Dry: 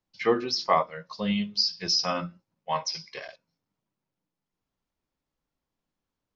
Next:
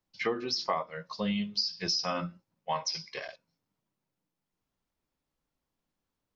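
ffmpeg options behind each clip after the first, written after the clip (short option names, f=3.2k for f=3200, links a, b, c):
-af "acompressor=threshold=-27dB:ratio=6"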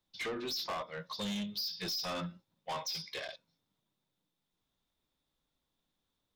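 -af "equalizer=f=3.6k:t=o:w=0.24:g=14.5,asoftclip=type=tanh:threshold=-34dB"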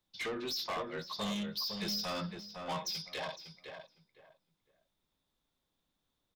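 -filter_complex "[0:a]asplit=2[a][b];[b]adelay=508,lowpass=f=1.9k:p=1,volume=-5dB,asplit=2[c][d];[d]adelay=508,lowpass=f=1.9k:p=1,volume=0.24,asplit=2[e][f];[f]adelay=508,lowpass=f=1.9k:p=1,volume=0.24[g];[a][c][e][g]amix=inputs=4:normalize=0"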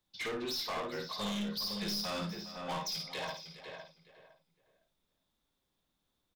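-af "aecho=1:1:53|410:0.531|0.178,aeval=exprs='clip(val(0),-1,0.0178)':c=same"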